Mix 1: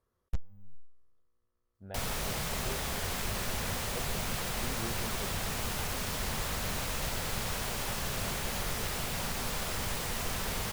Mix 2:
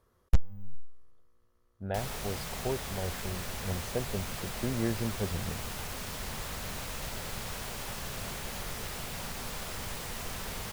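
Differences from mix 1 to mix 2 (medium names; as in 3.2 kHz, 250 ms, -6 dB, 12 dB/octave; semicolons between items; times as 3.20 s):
speech +10.5 dB; background -4.0 dB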